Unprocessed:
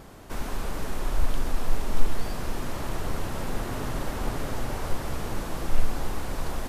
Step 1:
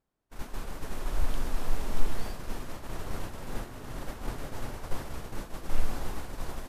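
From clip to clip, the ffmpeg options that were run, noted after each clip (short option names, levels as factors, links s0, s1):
-af "bandreject=f=47.38:t=h:w=4,bandreject=f=94.76:t=h:w=4,bandreject=f=142.14:t=h:w=4,bandreject=f=189.52:t=h:w=4,bandreject=f=236.9:t=h:w=4,bandreject=f=284.28:t=h:w=4,bandreject=f=331.66:t=h:w=4,bandreject=f=379.04:t=h:w=4,bandreject=f=426.42:t=h:w=4,bandreject=f=473.8:t=h:w=4,bandreject=f=521.18:t=h:w=4,bandreject=f=568.56:t=h:w=4,bandreject=f=615.94:t=h:w=4,bandreject=f=663.32:t=h:w=4,bandreject=f=710.7:t=h:w=4,bandreject=f=758.08:t=h:w=4,bandreject=f=805.46:t=h:w=4,bandreject=f=852.84:t=h:w=4,bandreject=f=900.22:t=h:w=4,bandreject=f=947.6:t=h:w=4,bandreject=f=994.98:t=h:w=4,bandreject=f=1042.36:t=h:w=4,bandreject=f=1089.74:t=h:w=4,bandreject=f=1137.12:t=h:w=4,bandreject=f=1184.5:t=h:w=4,bandreject=f=1231.88:t=h:w=4,bandreject=f=1279.26:t=h:w=4,bandreject=f=1326.64:t=h:w=4,bandreject=f=1374.02:t=h:w=4,agate=range=0.0224:threshold=0.0708:ratio=3:detection=peak,volume=0.668"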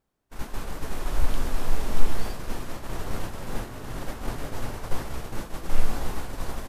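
-filter_complex "[0:a]asplit=2[s0][s1];[s1]adelay=18,volume=0.251[s2];[s0][s2]amix=inputs=2:normalize=0,volume=1.68"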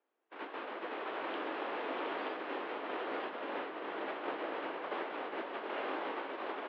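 -af "aecho=1:1:927:0.531,highpass=f=260:t=q:w=0.5412,highpass=f=260:t=q:w=1.307,lowpass=f=3200:t=q:w=0.5176,lowpass=f=3200:t=q:w=0.7071,lowpass=f=3200:t=q:w=1.932,afreqshift=55,volume=0.841"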